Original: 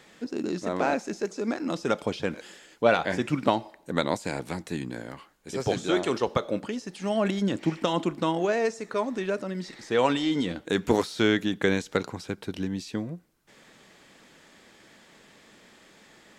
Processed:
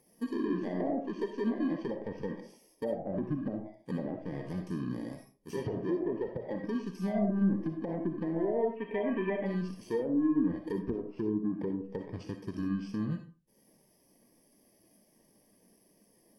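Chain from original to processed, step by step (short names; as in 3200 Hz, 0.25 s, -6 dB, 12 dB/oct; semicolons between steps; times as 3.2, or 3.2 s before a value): FFT order left unsorted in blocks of 32 samples; treble ducked by the level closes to 500 Hz, closed at -19.5 dBFS; in parallel at -1 dB: limiter -22.5 dBFS, peak gain reduction 9.5 dB; on the sum: compressor 6:1, threshold -26 dBFS, peak gain reduction 9.5 dB; soft clip -23.5 dBFS, distortion -16 dB; 8.76–9.46 resonant high shelf 3800 Hz -13.5 dB, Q 3; digital reverb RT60 0.44 s, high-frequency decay 0.7×, pre-delay 20 ms, DRR 2.5 dB; spectral expander 1.5:1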